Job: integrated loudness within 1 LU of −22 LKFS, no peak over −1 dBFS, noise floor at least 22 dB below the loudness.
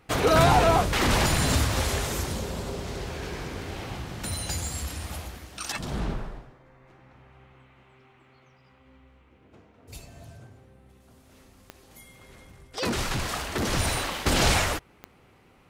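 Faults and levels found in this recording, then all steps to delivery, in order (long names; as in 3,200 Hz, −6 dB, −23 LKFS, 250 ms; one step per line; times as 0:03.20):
number of clicks 4; integrated loudness −26.5 LKFS; sample peak −7.5 dBFS; target loudness −22.0 LKFS
→ click removal
level +4.5 dB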